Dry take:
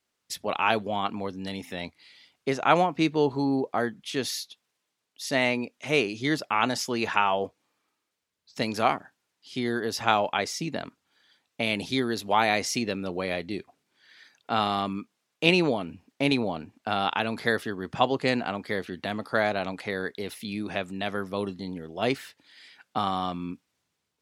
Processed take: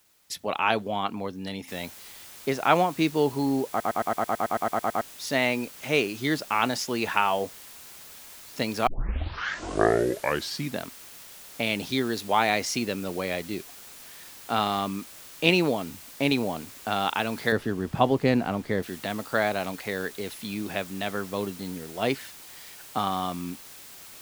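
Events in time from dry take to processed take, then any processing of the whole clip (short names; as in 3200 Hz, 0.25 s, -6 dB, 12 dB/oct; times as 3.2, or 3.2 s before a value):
1.68 noise floor step -64 dB -46 dB
3.69 stutter in place 0.11 s, 12 plays
8.87 tape start 1.98 s
17.52–18.83 tilt -2.5 dB/oct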